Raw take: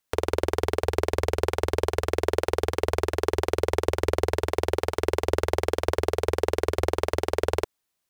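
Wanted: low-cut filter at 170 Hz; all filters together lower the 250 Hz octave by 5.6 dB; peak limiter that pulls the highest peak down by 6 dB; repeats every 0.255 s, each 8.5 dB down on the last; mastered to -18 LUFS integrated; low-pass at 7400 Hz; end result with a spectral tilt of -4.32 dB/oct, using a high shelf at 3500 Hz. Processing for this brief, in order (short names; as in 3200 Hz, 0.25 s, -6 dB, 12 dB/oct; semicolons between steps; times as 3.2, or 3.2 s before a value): HPF 170 Hz; LPF 7400 Hz; bell 250 Hz -9 dB; high shelf 3500 Hz -8 dB; limiter -14.5 dBFS; feedback echo 0.255 s, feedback 38%, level -8.5 dB; gain +14.5 dB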